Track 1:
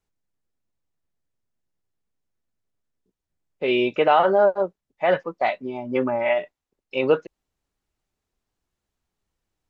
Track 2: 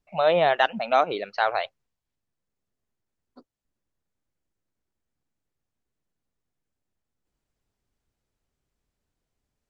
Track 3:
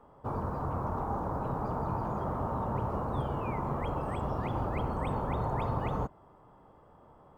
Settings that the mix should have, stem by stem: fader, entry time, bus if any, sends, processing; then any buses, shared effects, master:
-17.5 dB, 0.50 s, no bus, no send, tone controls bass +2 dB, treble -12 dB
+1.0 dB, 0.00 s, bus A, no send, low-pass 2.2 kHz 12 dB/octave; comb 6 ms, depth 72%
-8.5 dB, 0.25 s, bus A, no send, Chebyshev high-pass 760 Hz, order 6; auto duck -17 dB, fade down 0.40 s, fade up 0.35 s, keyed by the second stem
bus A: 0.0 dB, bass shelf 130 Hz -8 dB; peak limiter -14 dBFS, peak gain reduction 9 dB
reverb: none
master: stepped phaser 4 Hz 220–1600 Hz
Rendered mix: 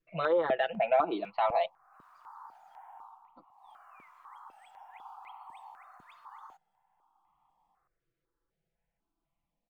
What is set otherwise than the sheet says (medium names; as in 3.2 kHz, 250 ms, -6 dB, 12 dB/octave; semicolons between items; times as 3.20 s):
stem 1: muted; stem 3: entry 0.25 s -> 0.50 s